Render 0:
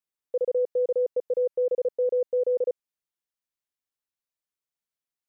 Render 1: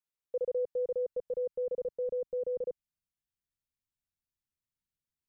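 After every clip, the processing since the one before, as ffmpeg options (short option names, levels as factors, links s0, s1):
-af "asubboost=boost=9.5:cutoff=180,volume=0.531"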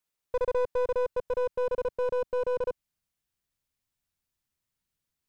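-af "aeval=exprs='clip(val(0),-1,0.0133)':c=same,volume=2.37"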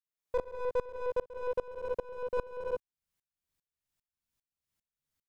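-filter_complex "[0:a]asplit=2[s0][s1];[s1]aecho=0:1:43|57:0.708|0.668[s2];[s0][s2]amix=inputs=2:normalize=0,aeval=exprs='val(0)*pow(10,-25*if(lt(mod(-2.5*n/s,1),2*abs(-2.5)/1000),1-mod(-2.5*n/s,1)/(2*abs(-2.5)/1000),(mod(-2.5*n/s,1)-2*abs(-2.5)/1000)/(1-2*abs(-2.5)/1000))/20)':c=same"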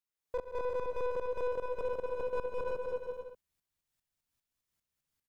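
-filter_complex "[0:a]asplit=2[s0][s1];[s1]aecho=0:1:210|357|459.9|531.9|582.4:0.631|0.398|0.251|0.158|0.1[s2];[s0][s2]amix=inputs=2:normalize=0,alimiter=level_in=1.26:limit=0.0631:level=0:latency=1:release=46,volume=0.794"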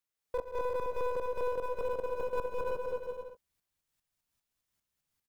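-filter_complex "[0:a]acrossover=split=460|1500[s0][s1][s2];[s1]asplit=2[s3][s4];[s4]adelay=19,volume=0.422[s5];[s3][s5]amix=inputs=2:normalize=0[s6];[s2]acrusher=bits=2:mode=log:mix=0:aa=0.000001[s7];[s0][s6][s7]amix=inputs=3:normalize=0,volume=1.19"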